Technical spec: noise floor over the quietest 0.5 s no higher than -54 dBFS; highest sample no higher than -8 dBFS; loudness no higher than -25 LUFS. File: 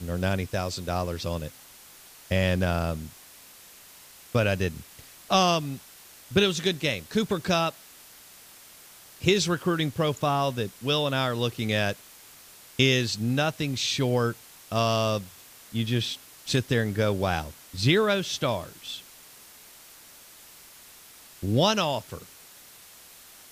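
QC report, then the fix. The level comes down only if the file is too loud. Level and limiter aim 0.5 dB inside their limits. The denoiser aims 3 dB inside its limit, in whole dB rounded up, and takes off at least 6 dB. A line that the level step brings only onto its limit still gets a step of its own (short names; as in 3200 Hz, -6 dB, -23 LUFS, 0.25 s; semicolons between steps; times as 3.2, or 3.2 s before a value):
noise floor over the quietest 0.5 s -50 dBFS: fail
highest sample -5.5 dBFS: fail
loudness -26.5 LUFS: OK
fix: denoiser 7 dB, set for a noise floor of -50 dBFS; limiter -8.5 dBFS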